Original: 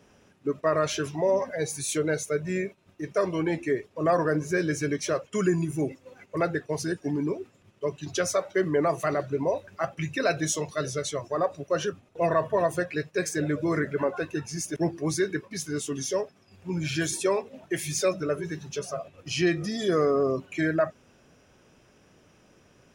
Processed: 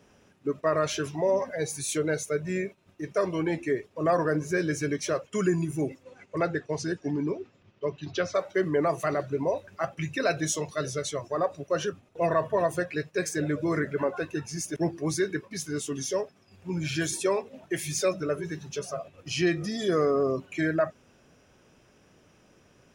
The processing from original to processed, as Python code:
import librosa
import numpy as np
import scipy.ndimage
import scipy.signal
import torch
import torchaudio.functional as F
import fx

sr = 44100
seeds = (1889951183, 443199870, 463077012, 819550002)

y = fx.lowpass(x, sr, hz=fx.line((6.03, 9900.0), (8.34, 4400.0)), slope=24, at=(6.03, 8.34), fade=0.02)
y = y * 10.0 ** (-1.0 / 20.0)